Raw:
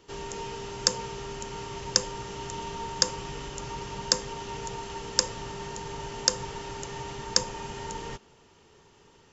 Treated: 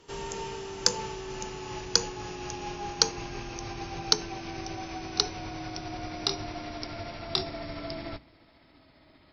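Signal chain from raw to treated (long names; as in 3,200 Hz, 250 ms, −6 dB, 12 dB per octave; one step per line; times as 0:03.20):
pitch glide at a constant tempo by −6.5 semitones starting unshifted
harmonic generator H 6 −37 dB, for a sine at −2 dBFS
mains-hum notches 60/120/180/240/300 Hz
level +1 dB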